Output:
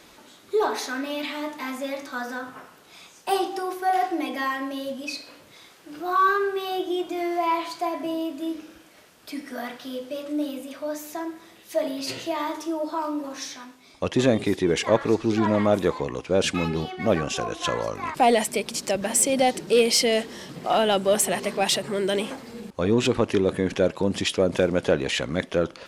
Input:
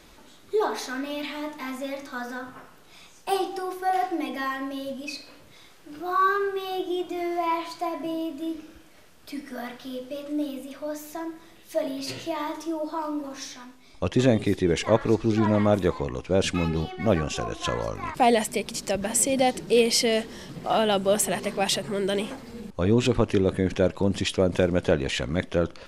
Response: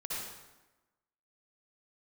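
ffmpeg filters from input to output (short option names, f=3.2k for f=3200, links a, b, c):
-filter_complex "[0:a]highpass=f=200:p=1,asplit=2[a][b];[b]asoftclip=type=tanh:threshold=-20.5dB,volume=-7.5dB[c];[a][c]amix=inputs=2:normalize=0"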